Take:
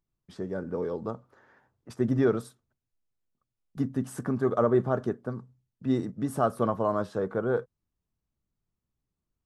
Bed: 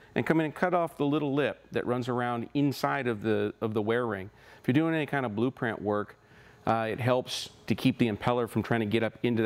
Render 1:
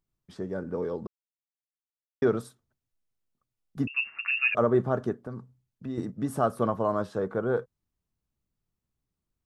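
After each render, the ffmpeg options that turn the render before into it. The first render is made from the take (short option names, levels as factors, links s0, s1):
-filter_complex "[0:a]asettb=1/sr,asplit=3[s0][s1][s2];[s0]atrim=end=3.874[s3];[s1]atrim=start=3.87:end=4.55,asetpts=PTS-STARTPTS,afade=t=in:d=0.004:c=qsin,afade=t=out:st=0.676:d=0.004:c=qsin,lowpass=f=2500:t=q:w=0.5098,lowpass=f=2500:t=q:w=0.6013,lowpass=f=2500:t=q:w=0.9,lowpass=f=2500:t=q:w=2.563,afreqshift=-2900[s4];[s2]atrim=start=4.546[s5];[s3][s4]acrossfade=d=0.004:c1=hsin:c2=qsin[s6];[s6][s5]acrossfade=d=0.004:c1=qsin:c2=hsin,asettb=1/sr,asplit=3[s7][s8][s9];[s7]atrim=end=5.154[s10];[s8]atrim=start=5.15:end=5.98,asetpts=PTS-STARTPTS,afade=t=in:d=0.004:c=qsin,afade=t=out:st=0.826:d=0.004:c=qsin,acompressor=threshold=0.0224:ratio=3:attack=3.2:release=140:knee=1:detection=peak[s11];[s9]atrim=start=5.976[s12];[s10][s11]acrossfade=d=0.004:c1=hsin:c2=qsin[s13];[s13][s12]acrossfade=d=0.004:c1=qsin:c2=hsin,asplit=3[s14][s15][s16];[s14]atrim=end=1.07,asetpts=PTS-STARTPTS,afade=t=out:st=1.066:d=0.004:c=hsin[s17];[s15]atrim=start=1.07:end=2.22,asetpts=PTS-STARTPTS,volume=0[s18];[s16]atrim=start=2.22,asetpts=PTS-STARTPTS,afade=t=in:d=0.004:c=hsin[s19];[s17][s18][s19]concat=n=3:v=0:a=1"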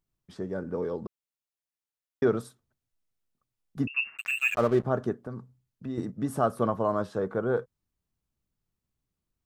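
-filter_complex "[0:a]asplit=3[s0][s1][s2];[s0]afade=t=out:st=4.16:d=0.02[s3];[s1]aeval=exprs='sgn(val(0))*max(abs(val(0))-0.0119,0)':c=same,afade=t=in:st=4.16:d=0.02,afade=t=out:st=4.84:d=0.02[s4];[s2]afade=t=in:st=4.84:d=0.02[s5];[s3][s4][s5]amix=inputs=3:normalize=0"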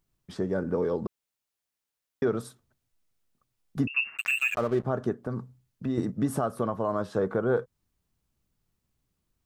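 -filter_complex "[0:a]asplit=2[s0][s1];[s1]acompressor=threshold=0.0251:ratio=6,volume=1.06[s2];[s0][s2]amix=inputs=2:normalize=0,alimiter=limit=0.158:level=0:latency=1:release=240"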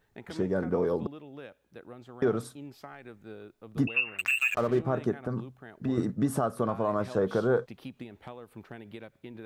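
-filter_complex "[1:a]volume=0.133[s0];[0:a][s0]amix=inputs=2:normalize=0"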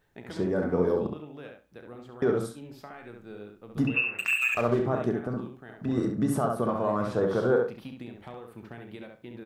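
-filter_complex "[0:a]asplit=2[s0][s1];[s1]adelay=33,volume=0.282[s2];[s0][s2]amix=inputs=2:normalize=0,asplit=2[s3][s4];[s4]adelay=68,lowpass=f=3000:p=1,volume=0.668,asplit=2[s5][s6];[s6]adelay=68,lowpass=f=3000:p=1,volume=0.21,asplit=2[s7][s8];[s8]adelay=68,lowpass=f=3000:p=1,volume=0.21[s9];[s5][s7][s9]amix=inputs=3:normalize=0[s10];[s3][s10]amix=inputs=2:normalize=0"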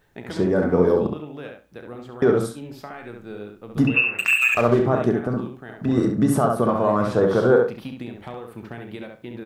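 -af "volume=2.37"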